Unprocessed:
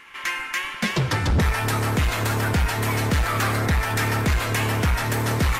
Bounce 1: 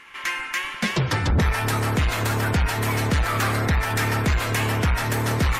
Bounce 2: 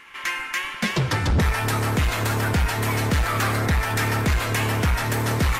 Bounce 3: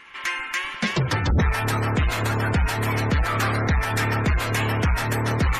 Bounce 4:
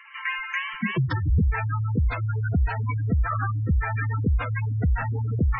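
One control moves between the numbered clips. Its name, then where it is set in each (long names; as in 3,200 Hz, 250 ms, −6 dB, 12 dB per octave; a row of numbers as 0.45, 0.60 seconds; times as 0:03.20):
gate on every frequency bin, under each frame's peak: −40, −60, −30, −10 decibels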